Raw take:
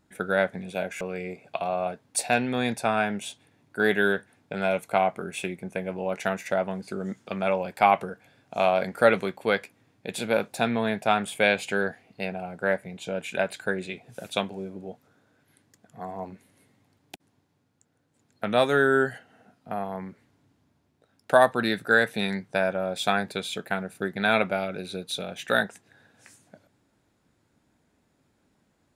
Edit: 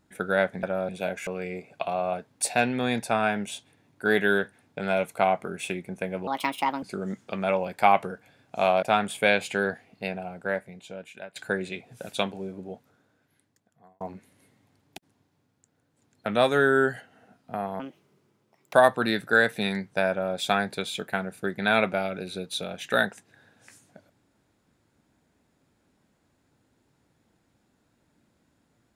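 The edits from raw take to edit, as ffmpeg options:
ffmpeg -i in.wav -filter_complex "[0:a]asplit=10[link_01][link_02][link_03][link_04][link_05][link_06][link_07][link_08][link_09][link_10];[link_01]atrim=end=0.632[link_11];[link_02]atrim=start=22.678:end=22.942[link_12];[link_03]atrim=start=0.628:end=6.014[link_13];[link_04]atrim=start=6.01:end=6.81,asetpts=PTS-STARTPTS,asetrate=63504,aresample=44100[link_14];[link_05]atrim=start=6.806:end=8.812[link_15];[link_06]atrim=start=10.998:end=13.53,asetpts=PTS-STARTPTS,afade=type=out:start_time=1.212:duration=1.32:silence=0.0944061[link_16];[link_07]atrim=start=13.53:end=16.18,asetpts=PTS-STARTPTS,afade=type=in:duration=0.004:curve=hsin:silence=0.0944061,afade=type=out:start_time=1.34:duration=1.31[link_17];[link_08]atrim=start=16.18:end=19.974,asetpts=PTS-STARTPTS,afade=type=in:duration=0.004:curve=hsin[link_18];[link_09]atrim=start=19.97:end=21.31,asetpts=PTS-STARTPTS,asetrate=63063,aresample=44100,atrim=end_sample=41324,asetpts=PTS-STARTPTS[link_19];[link_10]atrim=start=21.306[link_20];[link_11][link_12]acrossfade=duration=0.004:curve1=hsin:curve2=hsin[link_21];[link_21][link_13]acrossfade=duration=0.004:curve1=hsin:curve2=hsin[link_22];[link_22][link_14]acrossfade=duration=0.004:curve1=hsin:curve2=hsin[link_23];[link_23][link_15]acrossfade=duration=0.004:curve1=hsin:curve2=hsin[link_24];[link_16][link_17][link_18]concat=n=3:v=0:a=1[link_25];[link_24][link_25]acrossfade=duration=0.004:curve1=hsin:curve2=hsin[link_26];[link_26][link_19]acrossfade=duration=0.004:curve1=hsin:curve2=hsin[link_27];[link_27][link_20]acrossfade=duration=0.004:curve1=hsin:curve2=hsin" out.wav

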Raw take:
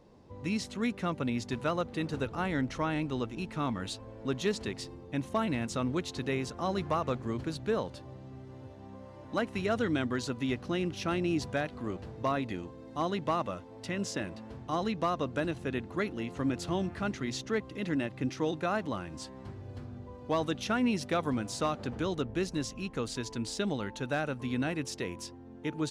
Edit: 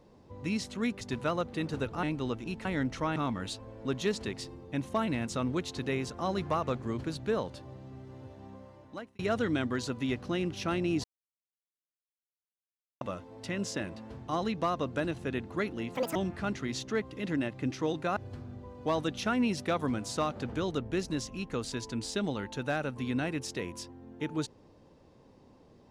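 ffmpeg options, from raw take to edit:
ffmpeg -i in.wav -filter_complex "[0:a]asplit=11[link_01][link_02][link_03][link_04][link_05][link_06][link_07][link_08][link_09][link_10][link_11];[link_01]atrim=end=1.012[link_12];[link_02]atrim=start=1.408:end=2.432[link_13];[link_03]atrim=start=2.938:end=3.562[link_14];[link_04]atrim=start=2.428:end=2.942[link_15];[link_05]atrim=start=3.558:end=9.59,asetpts=PTS-STARTPTS,afade=type=out:start_time=5.312:duration=0.72[link_16];[link_06]atrim=start=9.59:end=11.44,asetpts=PTS-STARTPTS,afade=type=in:duration=0.004:curve=hsin,afade=type=out:start_time=1.846:duration=0.004:curve=hsin[link_17];[link_07]atrim=start=11.44:end=13.41,asetpts=PTS-STARTPTS,volume=0[link_18];[link_08]atrim=start=13.41:end=16.354,asetpts=PTS-STARTPTS,afade=type=in:duration=0.004:curve=hsin[link_19];[link_09]atrim=start=16.35:end=16.74,asetpts=PTS-STARTPTS,asetrate=83790,aresample=44100,atrim=end_sample=9052,asetpts=PTS-STARTPTS[link_20];[link_10]atrim=start=16.736:end=18.752[link_21];[link_11]atrim=start=19.598[link_22];[link_12][link_13]acrossfade=duration=0.004:curve1=hsin:curve2=hsin[link_23];[link_23][link_14]acrossfade=duration=0.004:curve1=hsin:curve2=hsin[link_24];[link_24][link_15]acrossfade=duration=0.004:curve1=hsin:curve2=hsin[link_25];[link_16][link_17][link_18][link_19]concat=n=4:v=0:a=1[link_26];[link_25][link_26]acrossfade=duration=0.004:curve1=hsin:curve2=hsin[link_27];[link_27][link_20]acrossfade=duration=0.004:curve1=hsin:curve2=hsin[link_28];[link_28][link_21]acrossfade=duration=0.004:curve1=hsin:curve2=hsin[link_29];[link_29][link_22]acrossfade=duration=0.004:curve1=hsin:curve2=hsin" out.wav

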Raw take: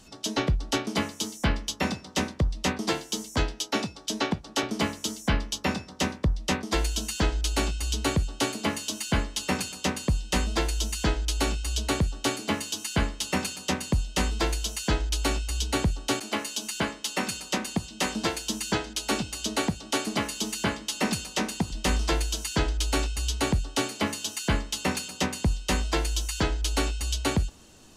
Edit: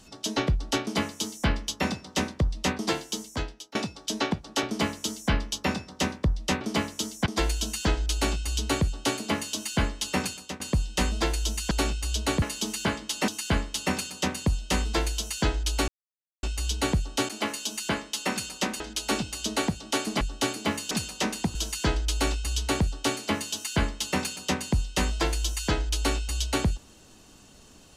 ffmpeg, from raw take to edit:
ffmpeg -i in.wav -filter_complex "[0:a]asplit=13[link_01][link_02][link_03][link_04][link_05][link_06][link_07][link_08][link_09][link_10][link_11][link_12][link_13];[link_01]atrim=end=3.75,asetpts=PTS-STARTPTS,afade=type=out:start_time=3.02:duration=0.73:silence=0.0944061[link_14];[link_02]atrim=start=3.75:end=6.612,asetpts=PTS-STARTPTS,afade=type=in:duration=0.004:curve=hsin:silence=0.0944061[link_15];[link_03]atrim=start=4.658:end=5.312[link_16];[link_04]atrim=start=6.608:end=9.95,asetpts=PTS-STARTPTS,afade=type=out:start_time=3.002:duration=0.34:silence=0.125893[link_17];[link_05]atrim=start=9.95:end=11.062,asetpts=PTS-STARTPTS,afade=type=in:duration=0.004:curve=hsin:silence=0.125893[link_18];[link_06]atrim=start=11.328:end=12.042[link_19];[link_07]atrim=start=20.208:end=21.072[link_20];[link_08]atrim=start=12.738:end=15.34,asetpts=PTS-STARTPTS,afade=type=out:start_time=2.598:duration=0.004:curve=hsin,apad=pad_dur=0.55[link_21];[link_09]atrim=start=15.34:end=17.712,asetpts=PTS-STARTPTS,afade=type=in:duration=0.004:curve=hsin[link_22];[link_10]atrim=start=18.798:end=20.212[link_23];[link_11]atrim=start=12.038:end=12.742[link_24];[link_12]atrim=start=21.068:end=21.712[link_25];[link_13]atrim=start=22.268[link_26];[link_14][link_15]concat=n=2:v=0:a=1[link_27];[link_27][link_16]acrossfade=duration=0.004:curve1=hsin:curve2=hsin[link_28];[link_17][link_18]concat=n=2:v=0:a=1[link_29];[link_28][link_29]acrossfade=duration=0.004:curve1=hsin:curve2=hsin[link_30];[link_30][link_19]acrossfade=duration=0.004:curve1=hsin:curve2=hsin[link_31];[link_31][link_20]acrossfade=duration=0.004:curve1=hsin:curve2=hsin[link_32];[link_21][link_22]concat=n=2:v=0:a=1[link_33];[link_32][link_33]acrossfade=duration=0.004:curve1=hsin:curve2=hsin[link_34];[link_34][link_23]acrossfade=duration=0.004:curve1=hsin:curve2=hsin[link_35];[link_35][link_24]acrossfade=duration=0.004:curve1=hsin:curve2=hsin[link_36];[link_36][link_25]acrossfade=duration=0.004:curve1=hsin:curve2=hsin[link_37];[link_37][link_26]acrossfade=duration=0.004:curve1=hsin:curve2=hsin" out.wav

